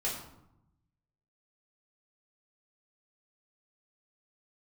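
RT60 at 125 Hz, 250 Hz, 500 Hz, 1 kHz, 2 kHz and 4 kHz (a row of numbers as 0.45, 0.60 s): 1.4, 1.2, 0.80, 0.85, 0.60, 0.50 s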